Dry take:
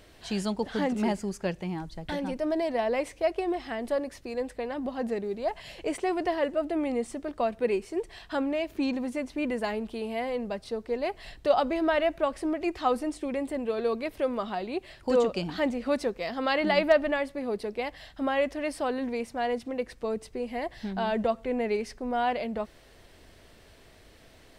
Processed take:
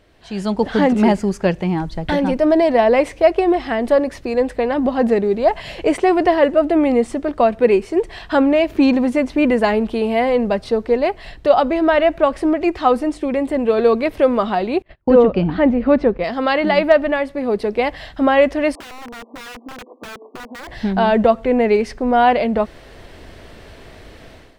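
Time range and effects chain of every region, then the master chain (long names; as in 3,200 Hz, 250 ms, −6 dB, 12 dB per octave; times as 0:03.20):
0:14.82–0:16.24: noise gate −47 dBFS, range −33 dB + low-pass filter 2,600 Hz + low-shelf EQ 320 Hz +8 dB
0:18.75–0:20.68: linear-phase brick-wall band-pass 230–1,200 Hz + wrap-around overflow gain 29 dB + downward compressor, threshold −47 dBFS
whole clip: high-shelf EQ 4,600 Hz −10.5 dB; automatic gain control gain up to 15.5 dB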